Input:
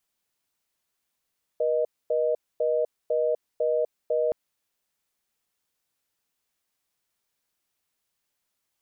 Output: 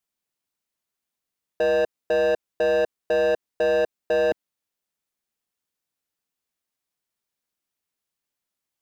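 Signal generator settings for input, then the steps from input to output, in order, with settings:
call progress tone reorder tone, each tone −24 dBFS 2.72 s
parametric band 230 Hz +3.5 dB 1.5 octaves
leveller curve on the samples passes 3

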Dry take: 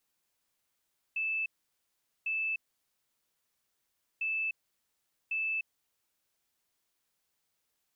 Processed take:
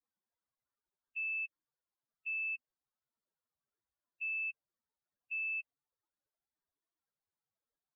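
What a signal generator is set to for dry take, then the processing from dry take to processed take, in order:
beeps in groups sine 2,630 Hz, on 0.30 s, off 0.80 s, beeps 2, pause 1.65 s, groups 2, −29.5 dBFS
spectral dynamics exaggerated over time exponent 3
low-pass filter 2,400 Hz

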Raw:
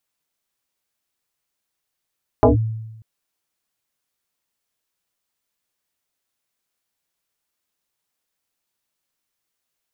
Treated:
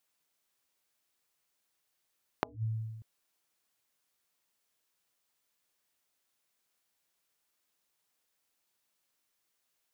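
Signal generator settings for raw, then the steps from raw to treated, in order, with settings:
two-operator FM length 0.59 s, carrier 111 Hz, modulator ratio 1.63, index 4.9, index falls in 0.14 s linear, decay 1.03 s, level −7 dB
low-shelf EQ 160 Hz −6.5 dB
downward compressor 2.5 to 1, threshold −28 dBFS
gate with flip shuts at −20 dBFS, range −29 dB

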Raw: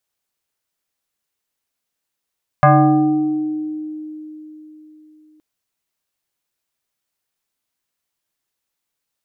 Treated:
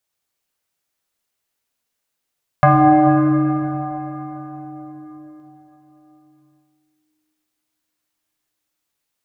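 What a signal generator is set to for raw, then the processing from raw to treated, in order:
two-operator FM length 2.77 s, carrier 308 Hz, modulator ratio 1.46, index 2.5, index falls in 1.81 s exponential, decay 3.87 s, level −6 dB
dense smooth reverb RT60 4.3 s, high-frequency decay 0.8×, DRR 1 dB

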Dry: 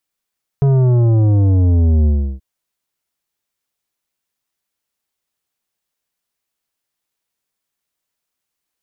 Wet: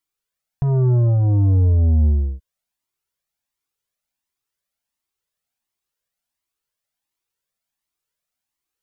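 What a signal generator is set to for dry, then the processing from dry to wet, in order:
bass drop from 140 Hz, over 1.78 s, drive 10.5 dB, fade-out 0.34 s, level −10.5 dB
flanger whose copies keep moving one way rising 1.4 Hz

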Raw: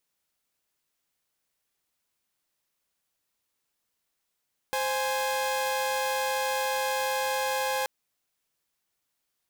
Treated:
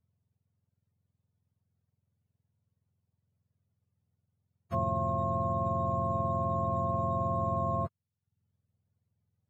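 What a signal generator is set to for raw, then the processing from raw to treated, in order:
held notes C5/G#5 saw, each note −26.5 dBFS 3.13 s
frequency axis turned over on the octave scale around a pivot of 750 Hz
reverb reduction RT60 0.53 s
parametric band 310 Hz −15 dB 0.42 octaves

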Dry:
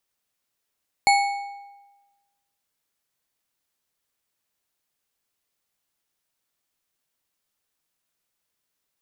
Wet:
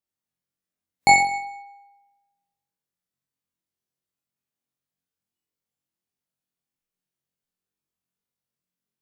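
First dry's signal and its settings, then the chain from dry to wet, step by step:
struck metal bar, lowest mode 804 Hz, modes 5, decay 1.21 s, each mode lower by 4.5 dB, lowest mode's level −13.5 dB
noise reduction from a noise print of the clip's start 16 dB
parametric band 160 Hz +13.5 dB 2.3 octaves
on a send: flutter between parallel walls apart 3.8 metres, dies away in 0.63 s

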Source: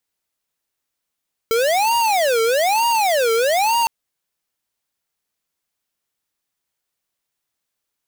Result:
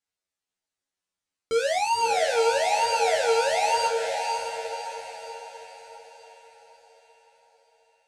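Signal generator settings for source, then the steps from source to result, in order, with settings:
siren wail 449–941 Hz 1.1 per second square −17 dBFS 2.36 s
low-pass filter 9,100 Hz 24 dB per octave
tuned comb filter 92 Hz, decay 0.21 s, harmonics all, mix 100%
on a send: feedback delay with all-pass diffusion 587 ms, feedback 48%, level −4.5 dB

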